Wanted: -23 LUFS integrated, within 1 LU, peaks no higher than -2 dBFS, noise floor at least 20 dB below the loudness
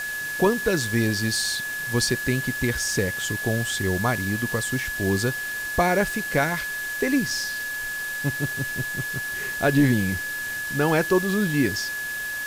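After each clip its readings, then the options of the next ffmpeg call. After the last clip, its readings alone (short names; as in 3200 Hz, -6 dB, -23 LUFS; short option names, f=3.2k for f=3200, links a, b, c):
steady tone 1700 Hz; tone level -28 dBFS; noise floor -30 dBFS; noise floor target -44 dBFS; loudness -24.0 LUFS; peak -9.0 dBFS; loudness target -23.0 LUFS
-> -af "bandreject=f=1.7k:w=30"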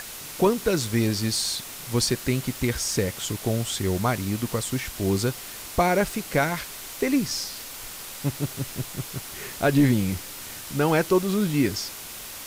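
steady tone none; noise floor -39 dBFS; noise floor target -46 dBFS
-> -af "afftdn=nr=7:nf=-39"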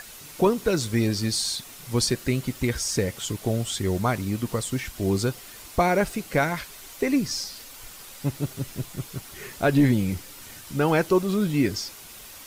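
noise floor -44 dBFS; noise floor target -46 dBFS
-> -af "afftdn=nr=6:nf=-44"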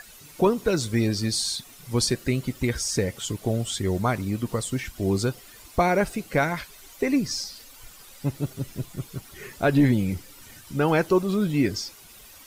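noise floor -48 dBFS; loudness -25.5 LUFS; peak -10.0 dBFS; loudness target -23.0 LUFS
-> -af "volume=2.5dB"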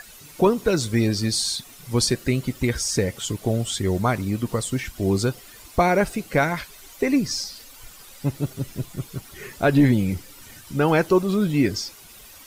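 loudness -23.0 LUFS; peak -7.5 dBFS; noise floor -46 dBFS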